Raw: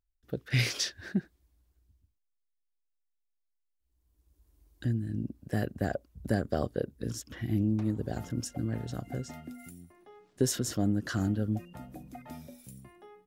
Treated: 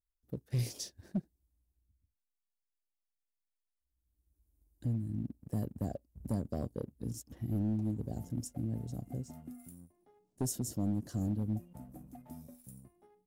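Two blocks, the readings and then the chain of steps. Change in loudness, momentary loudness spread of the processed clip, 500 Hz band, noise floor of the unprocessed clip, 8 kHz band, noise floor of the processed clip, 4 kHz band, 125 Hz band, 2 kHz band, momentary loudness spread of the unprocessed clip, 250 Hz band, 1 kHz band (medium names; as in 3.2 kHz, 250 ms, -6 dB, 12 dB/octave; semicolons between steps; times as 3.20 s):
-5.5 dB, 17 LU, -9.5 dB, -79 dBFS, -6.0 dB, under -85 dBFS, -13.5 dB, -4.0 dB, under -20 dB, 18 LU, -4.5 dB, -9.5 dB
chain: FFT filter 250 Hz 0 dB, 380 Hz -5 dB, 870 Hz -5 dB, 1.4 kHz -19 dB, 3.4 kHz -15 dB, 9.3 kHz +1 dB; waveshaping leveller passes 1; dynamic bell 1.3 kHz, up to -4 dB, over -50 dBFS, Q 0.95; hard clipper -20.5 dBFS, distortion -23 dB; trim -6.5 dB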